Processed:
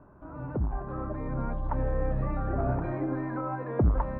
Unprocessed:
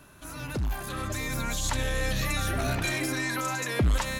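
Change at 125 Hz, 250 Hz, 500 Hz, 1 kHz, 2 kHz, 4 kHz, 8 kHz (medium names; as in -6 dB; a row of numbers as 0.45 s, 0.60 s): +0.5 dB, +1.0 dB, +1.5 dB, -1.0 dB, -15.0 dB, under -35 dB, under -40 dB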